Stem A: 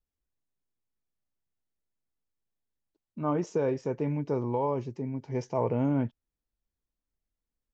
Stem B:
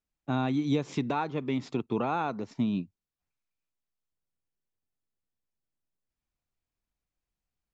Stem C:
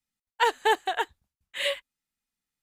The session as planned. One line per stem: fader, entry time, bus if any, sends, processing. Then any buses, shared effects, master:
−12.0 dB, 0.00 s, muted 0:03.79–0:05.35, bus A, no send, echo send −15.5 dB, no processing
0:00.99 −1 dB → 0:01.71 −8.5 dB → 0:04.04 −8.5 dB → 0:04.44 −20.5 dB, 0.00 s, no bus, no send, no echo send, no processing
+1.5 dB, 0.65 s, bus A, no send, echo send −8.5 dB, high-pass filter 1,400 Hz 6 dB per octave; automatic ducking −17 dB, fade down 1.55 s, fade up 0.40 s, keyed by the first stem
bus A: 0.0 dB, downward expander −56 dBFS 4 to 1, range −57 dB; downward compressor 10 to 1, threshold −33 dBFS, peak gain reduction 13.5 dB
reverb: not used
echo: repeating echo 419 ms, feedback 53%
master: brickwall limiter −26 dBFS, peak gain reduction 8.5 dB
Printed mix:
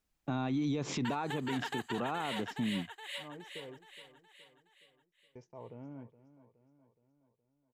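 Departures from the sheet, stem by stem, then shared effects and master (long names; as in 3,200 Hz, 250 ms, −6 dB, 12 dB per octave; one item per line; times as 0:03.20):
stem A −12.0 dB → −20.5 dB
stem B −1.0 dB → +7.0 dB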